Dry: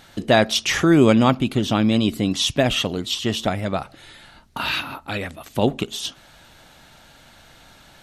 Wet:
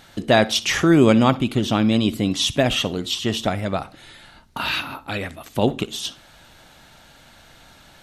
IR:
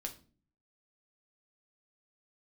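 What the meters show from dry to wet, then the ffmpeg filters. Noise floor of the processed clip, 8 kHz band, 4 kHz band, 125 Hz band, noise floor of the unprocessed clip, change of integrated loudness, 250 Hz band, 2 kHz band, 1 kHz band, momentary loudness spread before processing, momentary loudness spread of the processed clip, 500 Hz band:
-50 dBFS, 0.0 dB, 0.0 dB, 0.0 dB, -50 dBFS, 0.0 dB, 0.0 dB, 0.0 dB, 0.0 dB, 14 LU, 14 LU, 0.0 dB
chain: -filter_complex "[0:a]asplit=2[a][b];[1:a]atrim=start_sample=2205,adelay=60[c];[b][c]afir=irnorm=-1:irlink=0,volume=-17dB[d];[a][d]amix=inputs=2:normalize=0"

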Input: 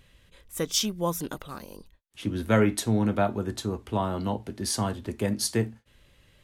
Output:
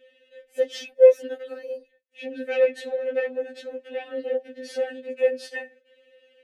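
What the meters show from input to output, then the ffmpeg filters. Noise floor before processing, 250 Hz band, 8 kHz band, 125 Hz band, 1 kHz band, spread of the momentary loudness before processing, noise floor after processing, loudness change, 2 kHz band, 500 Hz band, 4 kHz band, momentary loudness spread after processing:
-62 dBFS, -13.5 dB, under -15 dB, under -40 dB, -11.5 dB, 13 LU, -65 dBFS, +3.0 dB, +1.5 dB, +9.5 dB, -8.5 dB, 21 LU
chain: -filter_complex "[0:a]aeval=exprs='0.376*sin(PI/2*3.98*val(0)/0.376)':c=same,asplit=3[a][b][c];[a]bandpass=f=530:t=q:w=8,volume=0dB[d];[b]bandpass=f=1.84k:t=q:w=8,volume=-6dB[e];[c]bandpass=f=2.48k:t=q:w=8,volume=-9dB[f];[d][e][f]amix=inputs=3:normalize=0,afftfilt=real='re*3.46*eq(mod(b,12),0)':imag='im*3.46*eq(mod(b,12),0)':win_size=2048:overlap=0.75"

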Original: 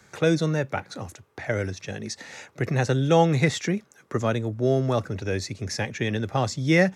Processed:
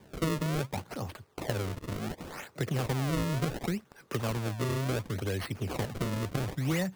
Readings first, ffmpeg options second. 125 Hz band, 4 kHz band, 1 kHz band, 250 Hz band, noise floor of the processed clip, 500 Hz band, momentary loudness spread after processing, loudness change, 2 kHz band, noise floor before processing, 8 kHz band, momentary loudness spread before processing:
-6.0 dB, -6.5 dB, -9.0 dB, -7.5 dB, -59 dBFS, -11.0 dB, 8 LU, -8.0 dB, -10.0 dB, -57 dBFS, -6.5 dB, 15 LU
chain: -filter_complex "[0:a]acrossover=split=160|4700[a][b][c];[a]acompressor=threshold=-34dB:ratio=4[d];[b]acompressor=threshold=-33dB:ratio=4[e];[c]acompressor=threshold=-40dB:ratio=4[f];[d][e][f]amix=inputs=3:normalize=0,acrusher=samples=32:mix=1:aa=0.000001:lfo=1:lforange=51.2:lforate=0.69"

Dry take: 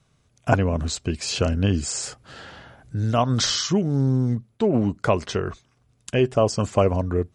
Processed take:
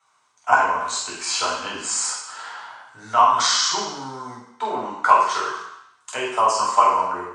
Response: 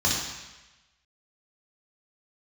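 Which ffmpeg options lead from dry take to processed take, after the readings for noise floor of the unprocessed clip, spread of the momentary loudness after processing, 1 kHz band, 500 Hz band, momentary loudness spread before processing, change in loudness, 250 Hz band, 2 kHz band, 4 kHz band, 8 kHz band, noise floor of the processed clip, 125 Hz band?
-65 dBFS, 18 LU, +12.0 dB, -5.0 dB, 13 LU, +2.5 dB, -14.5 dB, +8.0 dB, +3.5 dB, +5.5 dB, -62 dBFS, -25.0 dB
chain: -filter_complex "[0:a]highpass=f=980:t=q:w=4.7[a];[1:a]atrim=start_sample=2205,asetrate=57330,aresample=44100[b];[a][b]afir=irnorm=-1:irlink=0,volume=-8.5dB"

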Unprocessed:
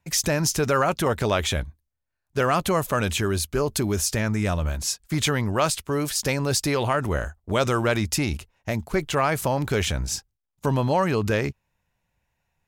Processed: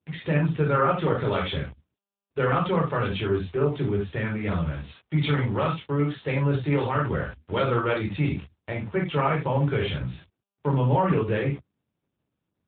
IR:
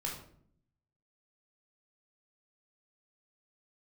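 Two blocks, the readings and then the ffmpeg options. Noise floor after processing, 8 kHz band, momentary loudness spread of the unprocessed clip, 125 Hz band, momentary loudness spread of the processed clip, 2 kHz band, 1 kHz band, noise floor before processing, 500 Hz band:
-83 dBFS, under -40 dB, 7 LU, +1.5 dB, 10 LU, -3.5 dB, -1.5 dB, -80 dBFS, -1.5 dB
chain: -filter_complex "[1:a]atrim=start_sample=2205,afade=t=out:st=0.14:d=0.01,atrim=end_sample=6615[a];[0:a][a]afir=irnorm=-1:irlink=0,acrossover=split=120[b][c];[c]aeval=exprs='val(0)*gte(abs(val(0)),0.0141)':c=same[d];[b][d]amix=inputs=2:normalize=0,volume=-2.5dB" -ar 8000 -c:a libopencore_amrnb -b:a 10200

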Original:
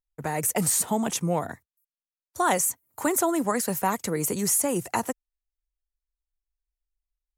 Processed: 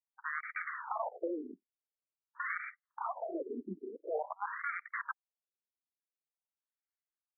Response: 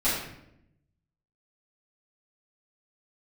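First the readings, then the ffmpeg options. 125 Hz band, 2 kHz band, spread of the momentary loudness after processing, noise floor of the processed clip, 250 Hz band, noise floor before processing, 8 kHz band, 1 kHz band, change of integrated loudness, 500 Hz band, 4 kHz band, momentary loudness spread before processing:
under -25 dB, -4.0 dB, 8 LU, under -85 dBFS, -17.5 dB, under -85 dBFS, under -40 dB, -11.5 dB, -14.5 dB, -12.0 dB, under -40 dB, 7 LU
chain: -af "aeval=exprs='(mod(11.2*val(0)+1,2)-1)/11.2':c=same,afftfilt=real='re*between(b*sr/1024,300*pow(1700/300,0.5+0.5*sin(2*PI*0.47*pts/sr))/1.41,300*pow(1700/300,0.5+0.5*sin(2*PI*0.47*pts/sr))*1.41)':imag='im*between(b*sr/1024,300*pow(1700/300,0.5+0.5*sin(2*PI*0.47*pts/sr))/1.41,300*pow(1700/300,0.5+0.5*sin(2*PI*0.47*pts/sr))*1.41)':win_size=1024:overlap=0.75,volume=-1dB"

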